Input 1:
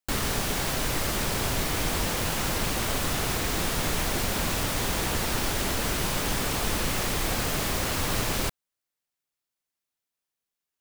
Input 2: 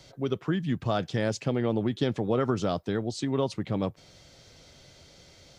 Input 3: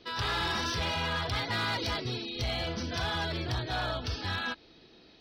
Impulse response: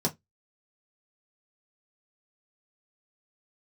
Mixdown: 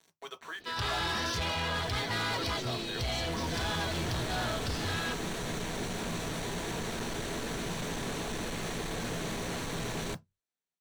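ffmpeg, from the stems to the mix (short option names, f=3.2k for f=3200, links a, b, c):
-filter_complex "[0:a]asoftclip=type=hard:threshold=-25.5dB,adelay=1650,volume=-8dB,afade=t=in:st=3.24:d=0.21:silence=0.473151,asplit=2[a][b];[b]volume=-13dB[c];[1:a]highpass=f=810:w=0.5412,highpass=f=810:w=1.3066,acrusher=bits=7:mix=0:aa=0.000001,volume=-4.5dB,asplit=2[d][e];[e]volume=-8.5dB[f];[2:a]adelay=600,volume=0dB[g];[a][d]amix=inputs=2:normalize=0,lowpass=8.1k,alimiter=level_in=8.5dB:limit=-24dB:level=0:latency=1,volume=-8.5dB,volume=0dB[h];[3:a]atrim=start_sample=2205[i];[c][f]amix=inputs=2:normalize=0[j];[j][i]afir=irnorm=-1:irlink=0[k];[g][h][k]amix=inputs=3:normalize=0,volume=29dB,asoftclip=hard,volume=-29dB"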